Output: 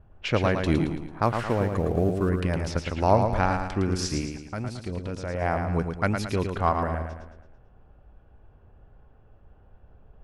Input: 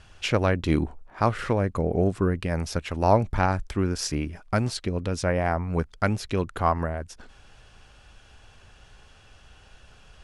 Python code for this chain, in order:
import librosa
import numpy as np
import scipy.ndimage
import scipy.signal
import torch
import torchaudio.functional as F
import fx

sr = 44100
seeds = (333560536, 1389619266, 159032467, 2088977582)

y = fx.law_mismatch(x, sr, coded='A', at=(1.22, 2.29))
y = fx.env_lowpass(y, sr, base_hz=570.0, full_db=-22.5)
y = fx.level_steps(y, sr, step_db=15, at=(4.21, 5.42))
y = fx.echo_feedback(y, sr, ms=111, feedback_pct=45, wet_db=-6.0)
y = y * librosa.db_to_amplitude(-1.0)